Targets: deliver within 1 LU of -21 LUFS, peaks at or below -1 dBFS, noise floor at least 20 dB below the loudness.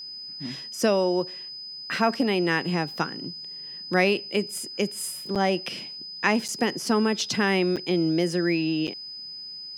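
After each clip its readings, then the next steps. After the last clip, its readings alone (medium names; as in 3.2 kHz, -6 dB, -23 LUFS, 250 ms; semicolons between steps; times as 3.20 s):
dropouts 4; longest dropout 6.9 ms; steady tone 5 kHz; tone level -36 dBFS; loudness -26.0 LUFS; peak level -6.5 dBFS; loudness target -21.0 LUFS
-> interpolate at 5.35/6.48/7.76/8.87 s, 6.9 ms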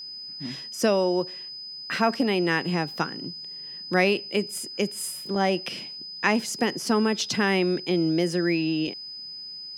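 dropouts 0; steady tone 5 kHz; tone level -36 dBFS
-> band-stop 5 kHz, Q 30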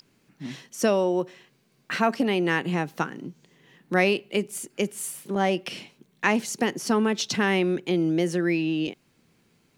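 steady tone not found; loudness -25.5 LUFS; peak level -6.5 dBFS; loudness target -21.0 LUFS
-> trim +4.5 dB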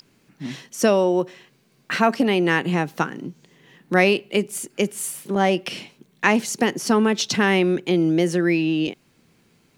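loudness -21.0 LUFS; peak level -2.0 dBFS; noise floor -61 dBFS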